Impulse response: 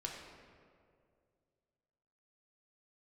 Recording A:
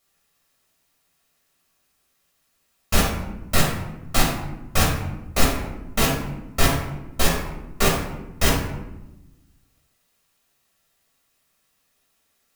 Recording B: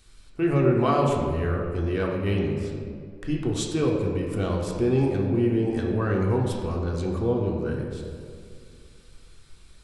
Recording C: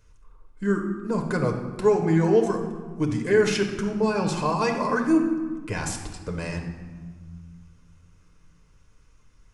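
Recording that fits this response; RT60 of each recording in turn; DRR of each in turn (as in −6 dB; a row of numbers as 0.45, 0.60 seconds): B; 1.0, 2.2, 1.6 seconds; −4.5, −1.5, 2.5 decibels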